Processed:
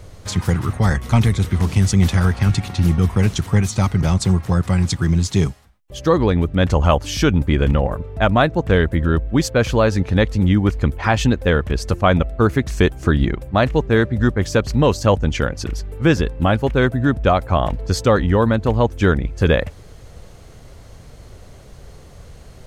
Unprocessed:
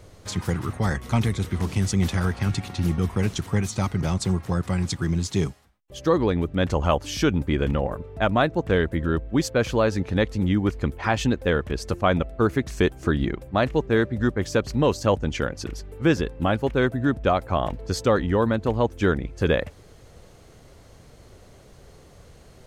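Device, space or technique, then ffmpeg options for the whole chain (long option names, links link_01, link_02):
low shelf boost with a cut just above: -af "lowshelf=frequency=100:gain=6.5,equalizer=frequency=340:width_type=o:width=0.93:gain=-2.5,volume=5.5dB"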